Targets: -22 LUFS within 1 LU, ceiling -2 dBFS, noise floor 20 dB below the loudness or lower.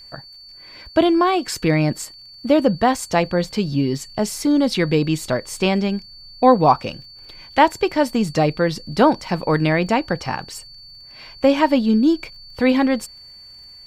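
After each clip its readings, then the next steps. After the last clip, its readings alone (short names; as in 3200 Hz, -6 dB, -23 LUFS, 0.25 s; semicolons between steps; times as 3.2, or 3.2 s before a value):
ticks 25/s; steady tone 4500 Hz; tone level -40 dBFS; loudness -19.0 LUFS; peak -1.5 dBFS; loudness target -22.0 LUFS
-> de-click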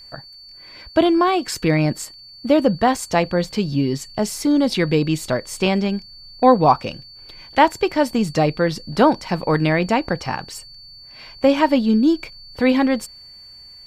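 ticks 0.072/s; steady tone 4500 Hz; tone level -40 dBFS
-> notch 4500 Hz, Q 30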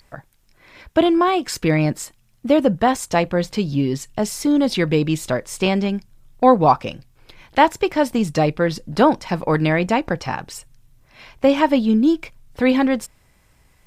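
steady tone none; loudness -19.0 LUFS; peak -1.5 dBFS; loudness target -22.0 LUFS
-> gain -3 dB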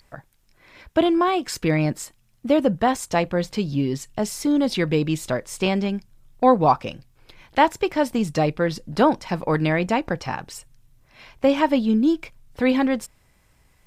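loudness -22.0 LUFS; peak -4.5 dBFS; noise floor -61 dBFS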